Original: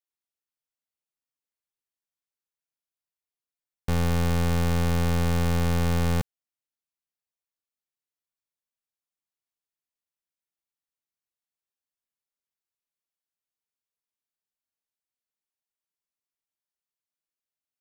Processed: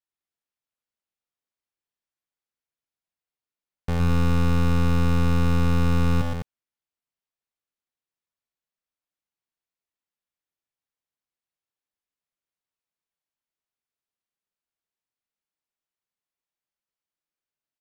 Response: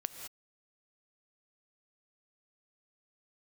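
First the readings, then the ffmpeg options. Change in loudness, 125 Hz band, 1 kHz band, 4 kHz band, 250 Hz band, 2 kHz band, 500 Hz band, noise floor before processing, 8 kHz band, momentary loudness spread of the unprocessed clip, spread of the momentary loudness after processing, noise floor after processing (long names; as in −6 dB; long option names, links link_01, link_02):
+2.5 dB, +3.0 dB, +1.5 dB, −1.0 dB, +3.5 dB, +0.5 dB, −0.5 dB, below −85 dBFS, −5.0 dB, 5 LU, 8 LU, below −85 dBFS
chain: -af "highshelf=frequency=5700:gain=-11,aecho=1:1:116.6|207:0.631|0.501"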